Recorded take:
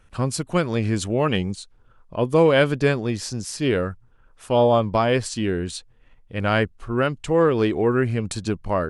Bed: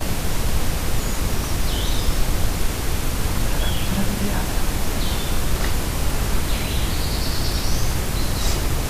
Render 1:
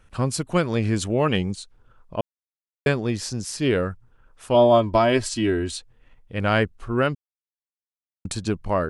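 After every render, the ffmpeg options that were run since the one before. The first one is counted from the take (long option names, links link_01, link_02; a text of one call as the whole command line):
ffmpeg -i in.wav -filter_complex "[0:a]asettb=1/sr,asplit=3[link_01][link_02][link_03];[link_01]atrim=end=4.544[link_04];[link_02]atrim=start=4.54:end=5.75,asetpts=PTS-STARTPTS,afade=type=in:duration=0.004:curve=qsin,afade=type=out:start_time=1.206:duration=0.004:curve=qsin,aecho=1:1:3.1:0.65,atrim=end_sample=53361[link_05];[link_03]atrim=start=5.746[link_06];[link_04][link_05]acrossfade=duration=0.004:curve1=hsin:curve2=qsin[link_07];[link_07][link_06]acrossfade=duration=0.004:curve1=qsin:curve2=hsin,asplit=5[link_08][link_09][link_10][link_11][link_12];[link_08]atrim=end=2.21,asetpts=PTS-STARTPTS,afade=type=out:start_time=2.206:duration=0.004:curve=hsin[link_13];[link_09]atrim=start=2.21:end=2.86,asetpts=PTS-STARTPTS,volume=0[link_14];[link_10]atrim=start=2.86:end=7.15,asetpts=PTS-STARTPTS,afade=type=in:duration=0.004:curve=hsin,afade=type=out:start_time=4.286:duration=0.004:curve=hsin[link_15];[link_11]atrim=start=7.15:end=8.25,asetpts=PTS-STARTPTS,volume=0[link_16];[link_12]atrim=start=8.25,asetpts=PTS-STARTPTS,afade=type=in:duration=0.004:curve=hsin[link_17];[link_13][link_14][link_15][link_16][link_17]concat=n=5:v=0:a=1" out.wav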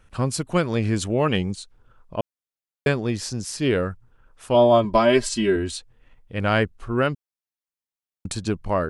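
ffmpeg -i in.wav -filter_complex "[0:a]asettb=1/sr,asplit=3[link_01][link_02][link_03];[link_01]atrim=end=4.844[link_04];[link_02]atrim=start=4.84:end=5.56,asetpts=PTS-STARTPTS,afade=type=in:duration=0.004:curve=qsin,afade=type=out:start_time=0.716:duration=0.004:curve=qsin,aecho=1:1:5:0.65,atrim=end_sample=31752[link_05];[link_03]atrim=start=5.556[link_06];[link_04][link_05]acrossfade=duration=0.004:curve1=hsin:curve2=qsin[link_07];[link_07][link_06]acrossfade=duration=0.004:curve1=qsin:curve2=hsin" out.wav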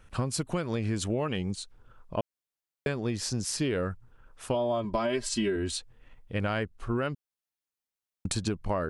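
ffmpeg -i in.wav -af "alimiter=limit=-14.5dB:level=0:latency=1:release=362,acompressor=threshold=-25dB:ratio=6" out.wav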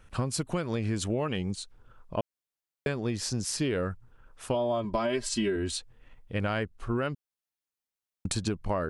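ffmpeg -i in.wav -af anull out.wav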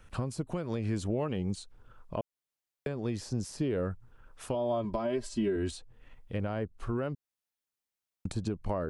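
ffmpeg -i in.wav -filter_complex "[0:a]acrossover=split=670|880[link_01][link_02][link_03];[link_03]acompressor=threshold=-44dB:ratio=6[link_04];[link_01][link_02][link_04]amix=inputs=3:normalize=0,alimiter=limit=-21.5dB:level=0:latency=1:release=342" out.wav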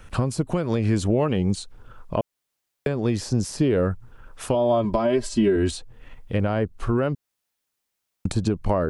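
ffmpeg -i in.wav -af "volume=10.5dB" out.wav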